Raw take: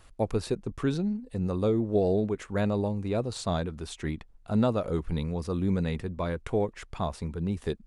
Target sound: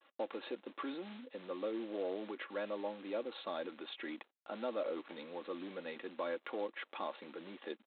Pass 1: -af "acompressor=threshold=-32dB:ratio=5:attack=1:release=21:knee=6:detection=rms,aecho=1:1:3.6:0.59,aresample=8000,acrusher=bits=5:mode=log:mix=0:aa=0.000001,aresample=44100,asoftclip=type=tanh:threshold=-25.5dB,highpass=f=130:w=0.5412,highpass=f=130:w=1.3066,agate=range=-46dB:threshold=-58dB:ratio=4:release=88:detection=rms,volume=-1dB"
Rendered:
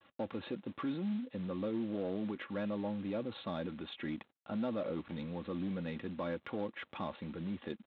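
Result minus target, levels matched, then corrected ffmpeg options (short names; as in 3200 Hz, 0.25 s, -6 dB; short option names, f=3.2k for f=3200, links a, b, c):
125 Hz band +16.5 dB; soft clip: distortion +15 dB
-af "acompressor=threshold=-32dB:ratio=5:attack=1:release=21:knee=6:detection=rms,aecho=1:1:3.6:0.59,aresample=8000,acrusher=bits=5:mode=log:mix=0:aa=0.000001,aresample=44100,asoftclip=type=tanh:threshold=-17.5dB,highpass=f=330:w=0.5412,highpass=f=330:w=1.3066,agate=range=-46dB:threshold=-58dB:ratio=4:release=88:detection=rms,volume=-1dB"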